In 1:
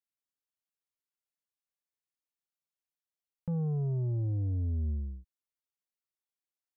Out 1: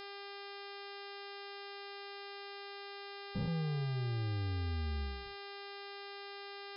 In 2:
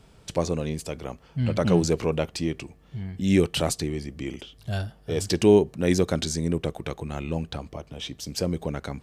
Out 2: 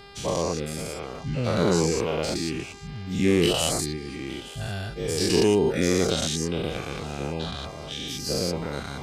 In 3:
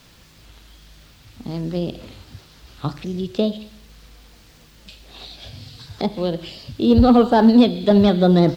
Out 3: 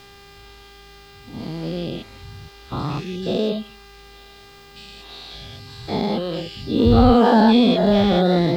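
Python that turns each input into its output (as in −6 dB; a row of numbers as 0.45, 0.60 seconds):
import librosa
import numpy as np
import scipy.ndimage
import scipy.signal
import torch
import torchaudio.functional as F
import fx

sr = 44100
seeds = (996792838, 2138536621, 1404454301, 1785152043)

p1 = fx.spec_dilate(x, sr, span_ms=240)
p2 = fx.dereverb_blind(p1, sr, rt60_s=0.58)
p3 = fx.peak_eq(p2, sr, hz=610.0, db=-4.0, octaves=0.23)
p4 = fx.dmg_buzz(p3, sr, base_hz=400.0, harmonics=13, level_db=-43.0, tilt_db=-3, odd_only=False)
p5 = p4 + fx.echo_wet_highpass(p4, sr, ms=869, feedback_pct=62, hz=1700.0, wet_db=-20, dry=0)
y = p5 * librosa.db_to_amplitude(-4.5)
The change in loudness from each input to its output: −8.5, 0.0, −1.0 LU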